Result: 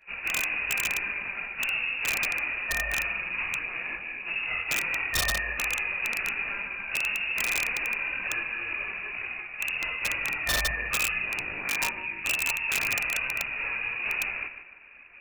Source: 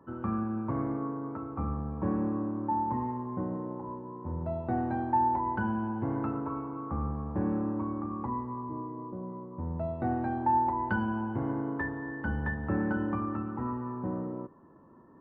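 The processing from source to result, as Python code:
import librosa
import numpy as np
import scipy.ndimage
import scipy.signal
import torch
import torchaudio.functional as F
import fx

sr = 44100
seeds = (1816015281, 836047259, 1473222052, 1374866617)

p1 = fx.halfwave_hold(x, sr)
p2 = fx.freq_invert(p1, sr, carrier_hz=2700)
p3 = fx.rider(p2, sr, range_db=3, speed_s=2.0)
p4 = fx.chorus_voices(p3, sr, voices=4, hz=0.96, base_ms=19, depth_ms=3.0, mix_pct=65)
p5 = p4 + fx.echo_feedback(p4, sr, ms=150, feedback_pct=38, wet_db=-10.5, dry=0)
y = (np.mod(10.0 ** (19.5 / 20.0) * p5 + 1.0, 2.0) - 1.0) / 10.0 ** (19.5 / 20.0)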